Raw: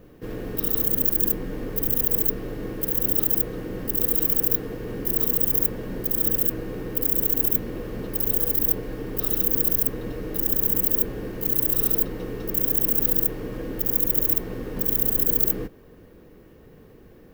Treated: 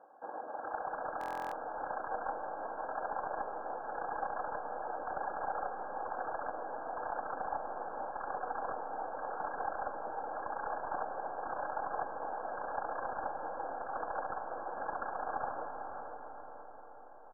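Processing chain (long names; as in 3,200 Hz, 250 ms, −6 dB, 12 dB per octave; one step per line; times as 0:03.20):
lower of the sound and its delayed copy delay 3.7 ms
reverb reduction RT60 0.76 s
high-pass with resonance 750 Hz, resonance Q 4.2
pitch-shifted copies added −5 semitones −16 dB, −4 semitones −17 dB, +12 semitones −18 dB
pitch vibrato 3.4 Hz 10 cents
hard clipping −18.5 dBFS, distortion −12 dB
linear-phase brick-wall low-pass 1,700 Hz
feedback delay with all-pass diffusion 553 ms, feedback 42%, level −8.5 dB
comb and all-pass reverb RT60 4.7 s, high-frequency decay 0.25×, pre-delay 25 ms, DRR 6.5 dB
buffer that repeats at 0:01.19, samples 1,024, times 13
level −6.5 dB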